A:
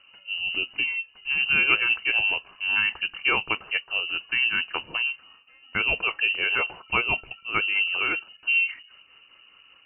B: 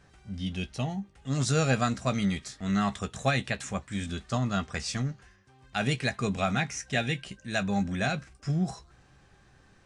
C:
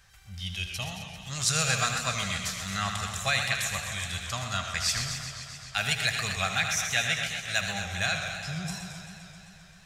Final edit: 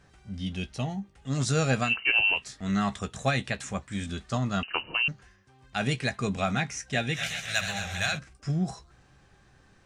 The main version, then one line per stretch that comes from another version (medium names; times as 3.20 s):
B
1.89–2.42 s: from A, crossfade 0.16 s
4.63–5.08 s: from A
7.17–8.15 s: from C, crossfade 0.10 s